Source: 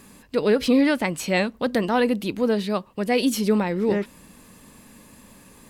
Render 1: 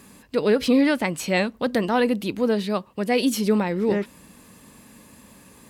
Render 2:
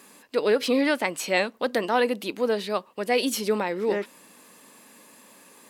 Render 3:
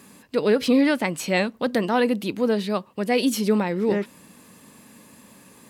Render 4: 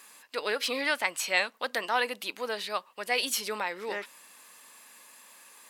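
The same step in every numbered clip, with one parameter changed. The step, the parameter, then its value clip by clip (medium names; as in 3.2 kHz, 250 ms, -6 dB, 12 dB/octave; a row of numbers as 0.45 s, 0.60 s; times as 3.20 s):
high-pass, cutoff frequency: 47 Hz, 360 Hz, 120 Hz, 940 Hz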